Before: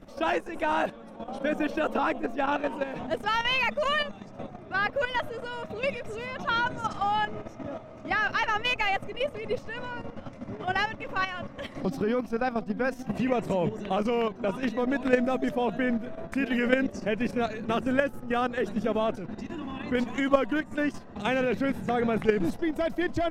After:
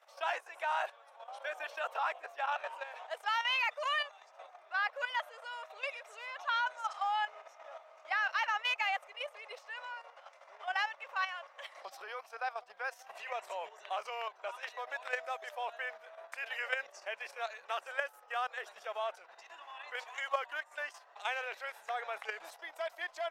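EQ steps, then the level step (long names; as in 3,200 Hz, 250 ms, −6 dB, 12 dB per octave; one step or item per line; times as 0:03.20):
inverse Chebyshev high-pass filter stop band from 270 Hz, stop band 50 dB
−5.5 dB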